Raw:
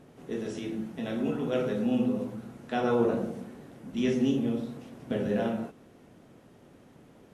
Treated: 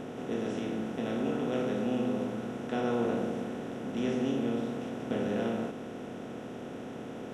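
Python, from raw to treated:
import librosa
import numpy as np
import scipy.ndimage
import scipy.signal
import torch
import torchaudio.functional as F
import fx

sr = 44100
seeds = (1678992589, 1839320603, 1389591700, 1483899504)

y = fx.bin_compress(x, sr, power=0.4)
y = F.gain(torch.from_numpy(y), -8.0).numpy()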